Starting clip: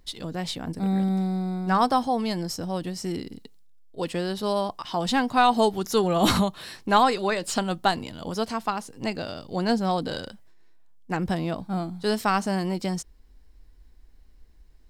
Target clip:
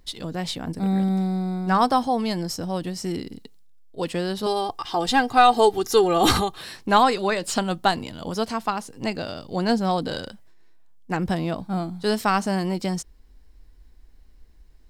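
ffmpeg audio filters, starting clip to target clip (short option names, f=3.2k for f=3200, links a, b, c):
-filter_complex "[0:a]asettb=1/sr,asplit=3[a][b][c];[a]atrim=end=4.464[d];[b]atrim=start=4.46:end=6.61,asetpts=PTS-STARTPTS,afade=t=in:d=0.004:c=qsin,afade=t=out:st=2.146:d=0.004:c=qsin,aecho=1:1:2.5:0.65,atrim=end_sample=94815[e];[c]atrim=start=6.606[f];[d][e]acrossfade=d=0.004:c1=hsin:c2=qsin[g];[g][f]acrossfade=d=0.004:c1=qsin:c2=hsin,volume=2dB"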